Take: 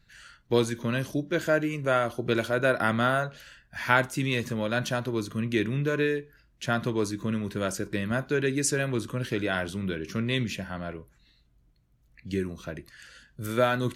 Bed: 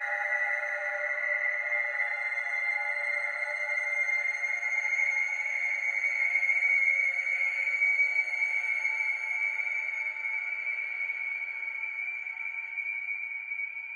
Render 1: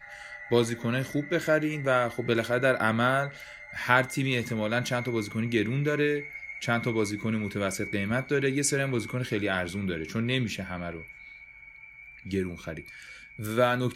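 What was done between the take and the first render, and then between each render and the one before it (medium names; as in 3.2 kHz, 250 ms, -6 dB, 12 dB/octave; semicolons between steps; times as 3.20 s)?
add bed -14 dB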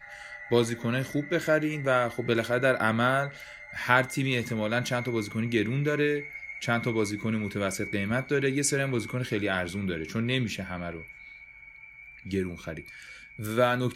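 no audible change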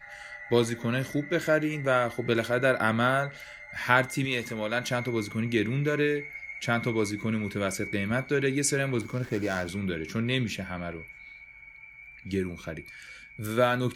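4.25–4.91 s: peaking EQ 130 Hz -7.5 dB 2 oct; 9.01–9.68 s: median filter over 15 samples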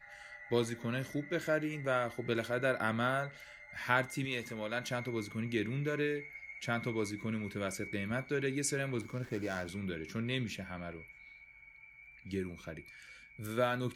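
trim -8 dB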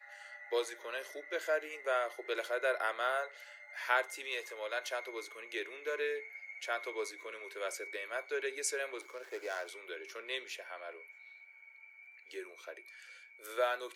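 steep high-pass 400 Hz 48 dB/octave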